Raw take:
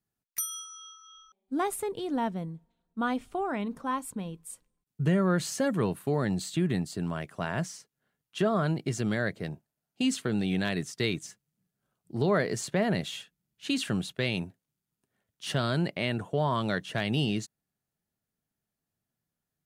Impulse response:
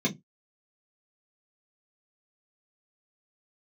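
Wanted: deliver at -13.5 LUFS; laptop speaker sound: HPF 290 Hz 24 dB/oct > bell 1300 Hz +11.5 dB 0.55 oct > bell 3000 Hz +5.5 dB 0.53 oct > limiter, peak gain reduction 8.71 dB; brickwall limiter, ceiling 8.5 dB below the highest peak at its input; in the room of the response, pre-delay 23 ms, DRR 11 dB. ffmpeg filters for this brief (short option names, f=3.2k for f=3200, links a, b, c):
-filter_complex "[0:a]alimiter=limit=-23.5dB:level=0:latency=1,asplit=2[a][b];[1:a]atrim=start_sample=2205,adelay=23[c];[b][c]afir=irnorm=-1:irlink=0,volume=-20dB[d];[a][d]amix=inputs=2:normalize=0,highpass=f=290:w=0.5412,highpass=f=290:w=1.3066,equalizer=f=1.3k:t=o:w=0.55:g=11.5,equalizer=f=3k:t=o:w=0.53:g=5.5,volume=23dB,alimiter=limit=-2.5dB:level=0:latency=1"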